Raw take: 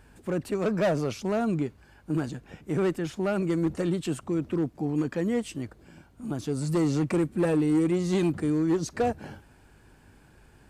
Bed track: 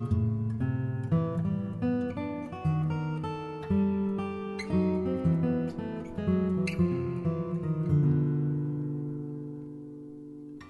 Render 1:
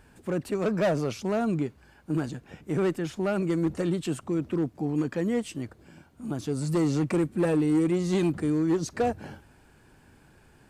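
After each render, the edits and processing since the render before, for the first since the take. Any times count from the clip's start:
hum removal 50 Hz, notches 2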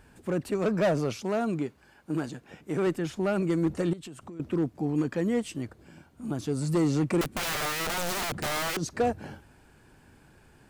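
0:01.16–0:02.87: low-shelf EQ 120 Hz −12 dB
0:03.93–0:04.40: downward compressor 10 to 1, threshold −39 dBFS
0:07.21–0:08.77: wrap-around overflow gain 25.5 dB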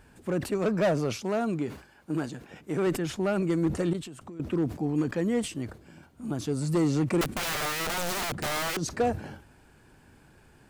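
level that may fall only so fast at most 130 dB per second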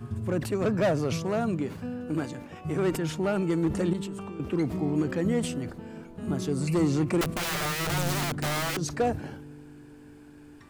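mix in bed track −6.5 dB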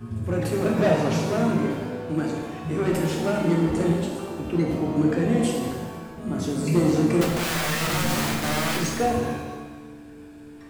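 reverb with rising layers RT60 1.2 s, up +7 semitones, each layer −8 dB, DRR −1.5 dB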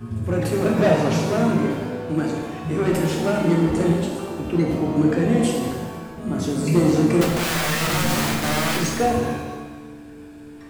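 level +3 dB

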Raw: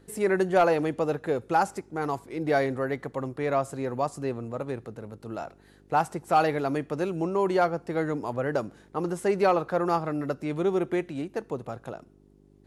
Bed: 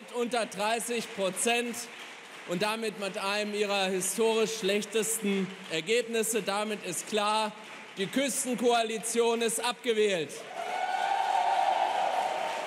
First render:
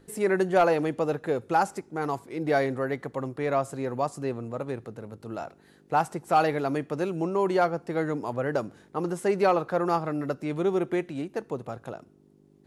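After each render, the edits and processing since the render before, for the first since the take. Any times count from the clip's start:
hum removal 50 Hz, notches 2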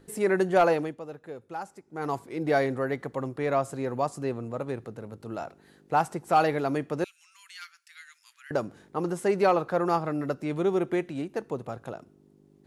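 0:00.71–0:02.12: duck −13 dB, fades 0.27 s
0:07.04–0:08.51: Bessel high-pass filter 2,900 Hz, order 8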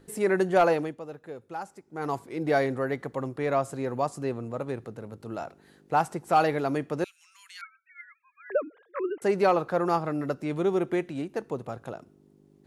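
0:07.61–0:09.22: three sine waves on the formant tracks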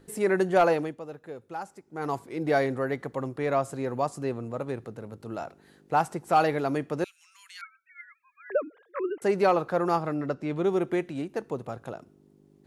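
0:10.14–0:10.64: high-frequency loss of the air 69 metres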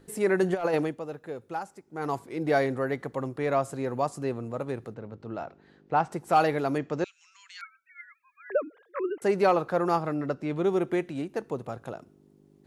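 0:00.43–0:01.59: compressor whose output falls as the input rises −24 dBFS, ratio −0.5
0:04.94–0:06.12: high-frequency loss of the air 160 metres
0:06.78–0:07.61: Butterworth low-pass 7,700 Hz 72 dB per octave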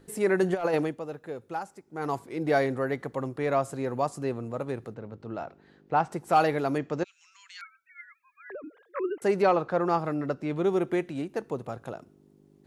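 0:07.03–0:08.64: downward compressor 5 to 1, threshold −38 dBFS
0:09.42–0:09.99: high-frequency loss of the air 70 metres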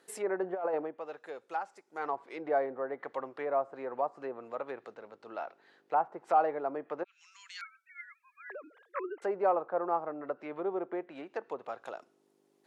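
treble cut that deepens with the level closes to 900 Hz, closed at −25 dBFS
high-pass filter 610 Hz 12 dB per octave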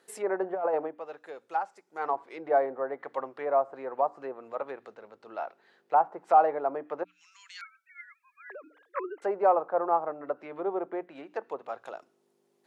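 mains-hum notches 60/120/180/240/300 Hz
dynamic equaliser 790 Hz, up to +6 dB, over −40 dBFS, Q 0.75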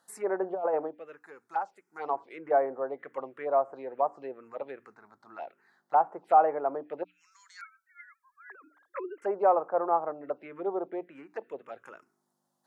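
phaser swept by the level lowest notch 400 Hz, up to 4,100 Hz, full sweep at −24.5 dBFS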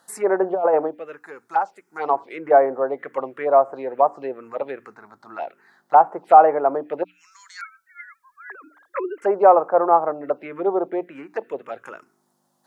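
level +10.5 dB
brickwall limiter −1 dBFS, peak gain reduction 1 dB

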